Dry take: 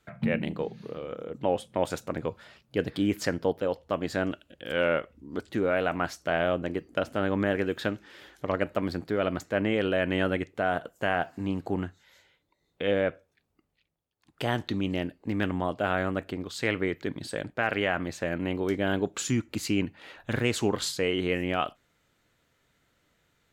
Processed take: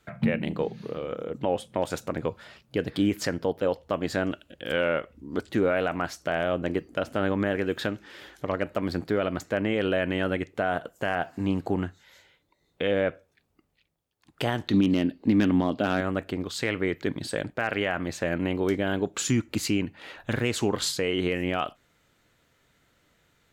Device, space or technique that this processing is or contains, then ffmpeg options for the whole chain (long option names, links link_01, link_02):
clipper into limiter: -filter_complex "[0:a]asettb=1/sr,asplit=3[link_01][link_02][link_03];[link_01]atrim=end=14.734[link_04];[link_02]atrim=start=14.73:end=16.01,asetpts=PTS-STARTPTS,afade=type=in:duration=0.004:curve=qsin,afade=type=out:start_time=1.276:duration=0.004:curve=qsin,equalizer=frequency=250:width_type=o:width=1:gain=11,equalizer=frequency=4000:width_type=o:width=1:gain=9,equalizer=frequency=8000:width_type=o:width=1:gain=-5[link_05];[link_03]atrim=start=16.006[link_06];[link_04][link_05]acrossfade=duration=0.004:curve1=hsin:curve2=qsin[link_07];[link_07][link_06]acrossfade=duration=0.004:curve1=qsin:curve2=hsin,asoftclip=type=hard:threshold=-12.5dB,alimiter=limit=-17.5dB:level=0:latency=1:release=227,volume=4dB"